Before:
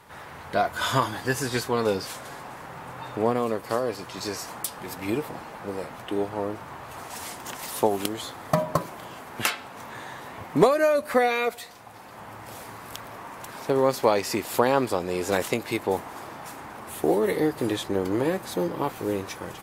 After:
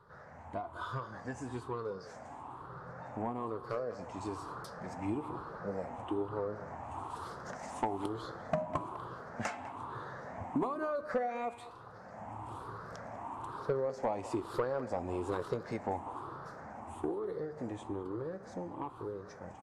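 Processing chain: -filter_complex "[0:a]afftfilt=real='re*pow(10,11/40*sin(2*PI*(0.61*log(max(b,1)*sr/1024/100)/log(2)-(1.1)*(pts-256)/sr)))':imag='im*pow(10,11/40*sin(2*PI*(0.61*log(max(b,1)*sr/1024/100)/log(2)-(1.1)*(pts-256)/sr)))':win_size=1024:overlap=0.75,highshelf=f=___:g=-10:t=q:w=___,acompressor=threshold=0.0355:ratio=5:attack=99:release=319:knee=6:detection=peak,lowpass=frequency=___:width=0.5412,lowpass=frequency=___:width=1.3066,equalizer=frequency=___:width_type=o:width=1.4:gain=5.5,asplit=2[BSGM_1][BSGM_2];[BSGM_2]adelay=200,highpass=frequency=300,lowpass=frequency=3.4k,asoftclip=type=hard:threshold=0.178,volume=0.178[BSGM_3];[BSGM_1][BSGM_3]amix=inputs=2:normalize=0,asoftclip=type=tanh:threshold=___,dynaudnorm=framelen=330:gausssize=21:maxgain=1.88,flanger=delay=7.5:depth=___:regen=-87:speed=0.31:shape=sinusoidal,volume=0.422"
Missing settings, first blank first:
1.7k, 1.5, 8.6k, 8.6k, 84, 0.178, 9.2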